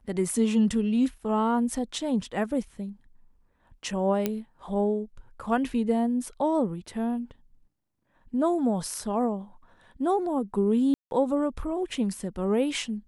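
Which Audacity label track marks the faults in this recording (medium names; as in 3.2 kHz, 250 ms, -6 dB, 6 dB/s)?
4.260000	4.260000	pop -12 dBFS
10.940000	11.110000	dropout 171 ms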